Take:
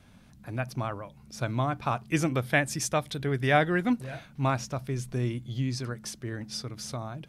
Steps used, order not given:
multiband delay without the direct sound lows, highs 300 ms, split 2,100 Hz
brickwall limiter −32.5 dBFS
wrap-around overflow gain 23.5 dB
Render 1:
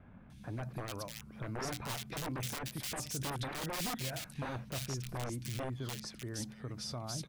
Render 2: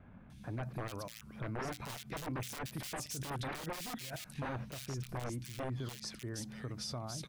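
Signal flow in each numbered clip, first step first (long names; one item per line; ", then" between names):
wrap-around overflow, then brickwall limiter, then multiband delay without the direct sound
wrap-around overflow, then multiband delay without the direct sound, then brickwall limiter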